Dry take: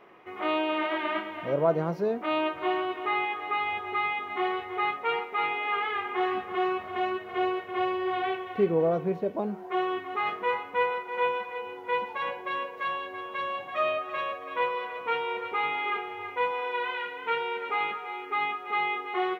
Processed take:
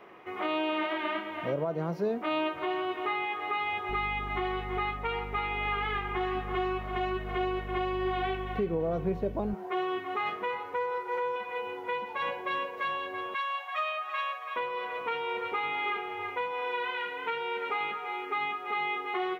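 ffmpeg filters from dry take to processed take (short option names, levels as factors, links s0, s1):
-filter_complex "[0:a]asettb=1/sr,asplit=3[s0][s1][s2];[s0]atrim=end=3.894[s3];[s1]atrim=start=3.89:end=9.54,asetpts=PTS-STARTPTS,afade=t=in:d=0.004:c=qsin,afade=t=out:st=5.646:d=0.004:c=qsin,aeval=exprs='val(0)+0.0112*(sin(2*PI*50*n/s)+sin(2*PI*2*50*n/s)/2+sin(2*PI*3*50*n/s)/3+sin(2*PI*4*50*n/s)/4+sin(2*PI*5*50*n/s)/5)':c=same[s4];[s2]atrim=start=9.536[s5];[s3][s4]acrossfade=d=0.004:c1=hsin:c2=qsin[s6];[s6][s5]acrossfade=d=0.004:c1=qsin:c2=hsin,asettb=1/sr,asplit=3[s7][s8][s9];[s7]atrim=end=10.604[s10];[s8]atrim=start=10.6:end=11.36,asetpts=PTS-STARTPTS,afade=t=in:d=0.004:c=qsin,afade=t=out:st=0.756:d=0.004:c=qsin,aecho=1:1:2.2:0.65,atrim=end_sample=33516[s11];[s9]atrim=start=11.356[s12];[s10][s11]acrossfade=d=0.004:c1=hsin:c2=qsin[s13];[s13][s12]acrossfade=d=0.004:c1=qsin:c2=hsin,asettb=1/sr,asplit=3[s14][s15][s16];[s14]atrim=end=13.344[s17];[s15]atrim=start=13.34:end=14.56,asetpts=PTS-STARTPTS,afade=t=in:d=0.004:c=qsin,afade=t=out:st=1.216:d=0.004:c=qsin,highpass=f=780:w=0.5412,highpass=f=780:w=1.3066[s18];[s16]atrim=start=14.556[s19];[s17][s18]acrossfade=d=0.004:c1=hsin:c2=qsin[s20];[s20][s19]acrossfade=d=0.004:c1=qsin:c2=hsin,alimiter=limit=0.0841:level=0:latency=1:release=329,acrossover=split=280|3000[s21][s22][s23];[s22]acompressor=threshold=0.0141:ratio=1.5[s24];[s21][s24][s23]amix=inputs=3:normalize=0,volume=1.33"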